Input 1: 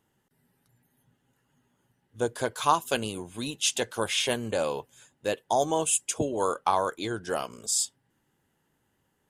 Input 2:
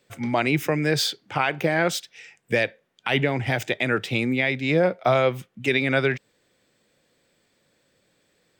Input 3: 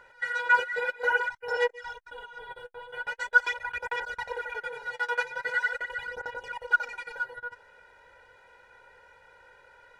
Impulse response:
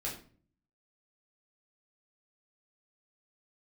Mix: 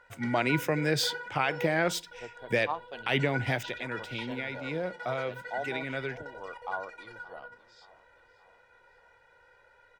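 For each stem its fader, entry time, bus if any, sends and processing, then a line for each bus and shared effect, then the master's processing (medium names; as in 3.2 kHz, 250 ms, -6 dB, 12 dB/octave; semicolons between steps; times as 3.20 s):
-19.5 dB, 0.00 s, no send, echo send -18.5 dB, steep low-pass 4.5 kHz 36 dB/octave; peaking EQ 720 Hz +6.5 dB; three bands expanded up and down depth 70%
3.54 s -5.5 dB -> 3.75 s -14 dB, 0.00 s, send -22.5 dB, no echo send, expander -57 dBFS
-8.0 dB, 0.00 s, send -6 dB, no echo send, treble shelf 9.9 kHz -4.5 dB; compression 1.5:1, threshold -40 dBFS, peak gain reduction 9.5 dB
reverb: on, pre-delay 8 ms
echo: feedback delay 575 ms, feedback 49%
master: none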